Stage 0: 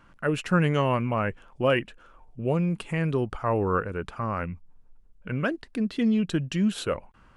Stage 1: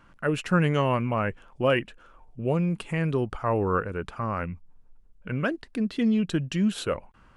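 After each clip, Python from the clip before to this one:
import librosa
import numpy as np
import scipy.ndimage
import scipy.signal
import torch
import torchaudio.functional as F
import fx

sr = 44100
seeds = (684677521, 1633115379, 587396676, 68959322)

y = x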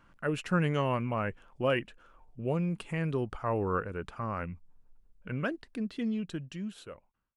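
y = fx.fade_out_tail(x, sr, length_s=1.93)
y = F.gain(torch.from_numpy(y), -5.5).numpy()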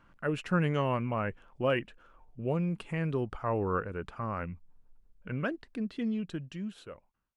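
y = fx.high_shelf(x, sr, hz=5500.0, db=-7.0)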